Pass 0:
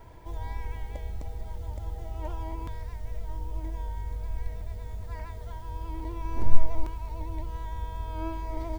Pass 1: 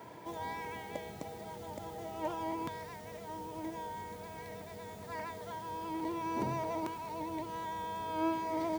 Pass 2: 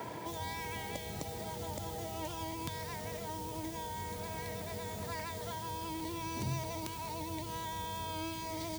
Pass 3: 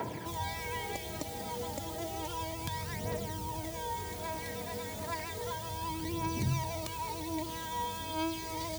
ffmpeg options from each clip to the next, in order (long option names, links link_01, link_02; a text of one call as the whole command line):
ffmpeg -i in.wav -af "highpass=frequency=150:width=0.5412,highpass=frequency=150:width=1.3066,volume=4dB" out.wav
ffmpeg -i in.wav -filter_complex "[0:a]acrossover=split=130|3000[link_01][link_02][link_03];[link_02]acompressor=threshold=-50dB:ratio=10[link_04];[link_01][link_04][link_03]amix=inputs=3:normalize=0,volume=10dB" out.wav
ffmpeg -i in.wav -af "aphaser=in_gain=1:out_gain=1:delay=4.2:decay=0.5:speed=0.32:type=triangular,volume=1.5dB" out.wav